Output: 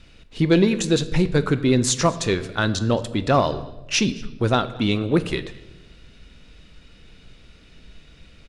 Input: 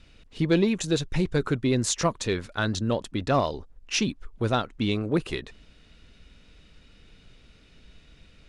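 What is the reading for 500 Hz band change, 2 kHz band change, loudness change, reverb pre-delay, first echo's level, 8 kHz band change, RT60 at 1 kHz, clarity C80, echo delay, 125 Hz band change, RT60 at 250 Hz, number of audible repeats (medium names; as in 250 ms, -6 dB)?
+5.5 dB, +5.0 dB, +5.5 dB, 3 ms, -24.0 dB, +5.0 dB, 0.85 s, 16.5 dB, 221 ms, +5.5 dB, 1.3 s, 1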